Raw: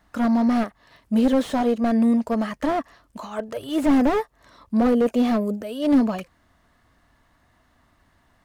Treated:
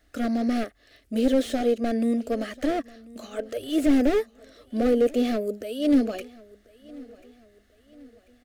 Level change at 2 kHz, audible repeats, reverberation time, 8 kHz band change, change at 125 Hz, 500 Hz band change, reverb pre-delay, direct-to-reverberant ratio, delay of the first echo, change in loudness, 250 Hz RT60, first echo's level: -3.0 dB, 2, none, n/a, n/a, -0.5 dB, none, none, 1.04 s, -3.0 dB, none, -22.5 dB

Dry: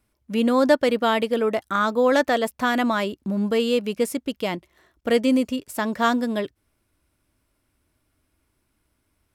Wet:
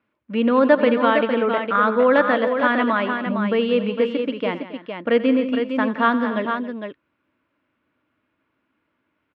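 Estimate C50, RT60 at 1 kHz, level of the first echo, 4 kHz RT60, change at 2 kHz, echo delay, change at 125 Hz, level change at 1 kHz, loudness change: none, none, -15.5 dB, none, +4.5 dB, 87 ms, +1.0 dB, +3.5 dB, +2.5 dB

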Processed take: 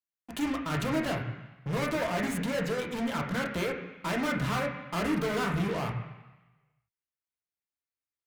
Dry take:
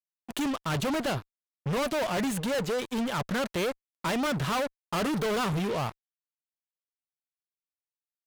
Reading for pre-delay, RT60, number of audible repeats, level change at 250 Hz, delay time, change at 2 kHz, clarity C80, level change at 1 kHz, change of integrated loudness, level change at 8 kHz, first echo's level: 3 ms, 1.1 s, none, -0.5 dB, none, +0.5 dB, 7.0 dB, -2.0 dB, -1.5 dB, -4.5 dB, none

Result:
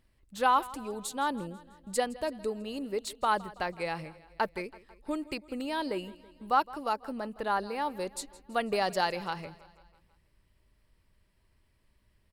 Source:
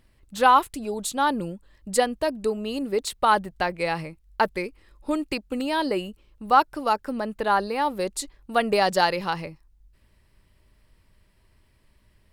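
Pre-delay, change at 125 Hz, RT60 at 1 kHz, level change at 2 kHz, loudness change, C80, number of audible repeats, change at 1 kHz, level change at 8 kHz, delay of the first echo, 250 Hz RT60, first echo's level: none, -8.0 dB, none, -8.0 dB, -8.0 dB, none, 4, -8.0 dB, -8.0 dB, 0.164 s, none, -19.5 dB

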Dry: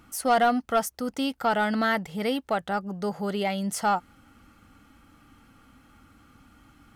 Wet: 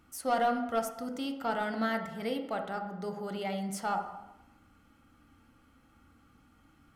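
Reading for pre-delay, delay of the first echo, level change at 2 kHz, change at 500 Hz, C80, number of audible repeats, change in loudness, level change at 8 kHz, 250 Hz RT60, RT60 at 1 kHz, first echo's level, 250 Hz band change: 11 ms, none, -8.5 dB, -6.5 dB, 10.0 dB, none, -7.0 dB, -9.0 dB, 0.80 s, 0.90 s, none, -7.0 dB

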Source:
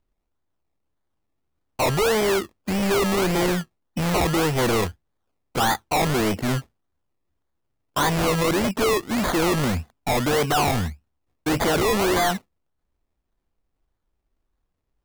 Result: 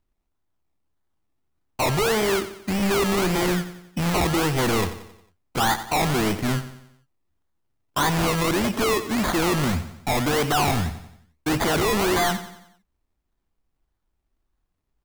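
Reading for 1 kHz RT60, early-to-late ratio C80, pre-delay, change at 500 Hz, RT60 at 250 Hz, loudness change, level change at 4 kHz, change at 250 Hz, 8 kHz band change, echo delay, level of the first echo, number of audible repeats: none, none, none, -2.0 dB, none, -0.5 dB, +0.5 dB, 0.0 dB, +0.5 dB, 90 ms, -13.0 dB, 4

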